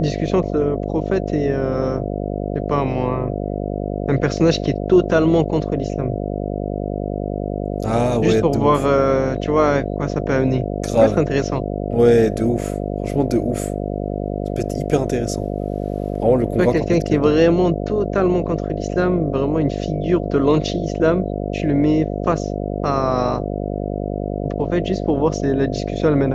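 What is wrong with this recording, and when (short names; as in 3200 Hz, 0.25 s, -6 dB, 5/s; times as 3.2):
buzz 50 Hz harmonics 14 -24 dBFS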